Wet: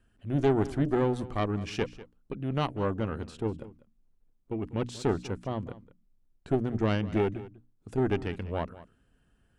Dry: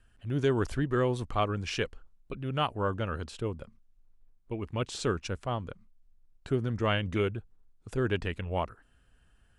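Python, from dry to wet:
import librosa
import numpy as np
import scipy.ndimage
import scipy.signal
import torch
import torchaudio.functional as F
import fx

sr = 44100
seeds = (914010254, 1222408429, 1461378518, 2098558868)

p1 = fx.peak_eq(x, sr, hz=250.0, db=10.0, octaves=2.3)
p2 = fx.hum_notches(p1, sr, base_hz=60, count=5)
p3 = fx.tube_stage(p2, sr, drive_db=15.0, bias=0.8)
y = p3 + fx.echo_single(p3, sr, ms=196, db=-17.5, dry=0)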